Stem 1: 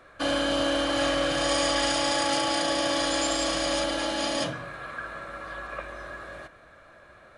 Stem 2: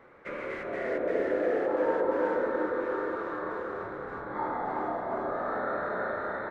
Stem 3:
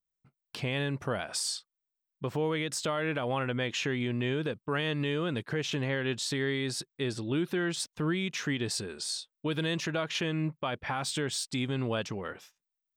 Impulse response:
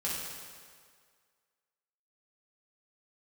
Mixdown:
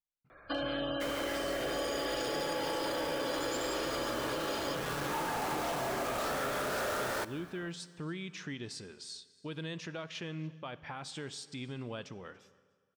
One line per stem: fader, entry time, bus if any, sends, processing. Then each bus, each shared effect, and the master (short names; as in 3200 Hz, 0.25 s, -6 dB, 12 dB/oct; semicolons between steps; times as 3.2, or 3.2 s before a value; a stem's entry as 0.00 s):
-3.5 dB, 0.30 s, no send, no echo send, spectral gate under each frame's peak -20 dB strong
-4.0 dB, 0.75 s, send -21 dB, no echo send, companded quantiser 2-bit
-10.5 dB, 0.00 s, send -19 dB, echo send -24 dB, LPF 8000 Hz 12 dB/oct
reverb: on, RT60 1.9 s, pre-delay 3 ms
echo: echo 0.287 s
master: compressor, threshold -32 dBFS, peak gain reduction 9 dB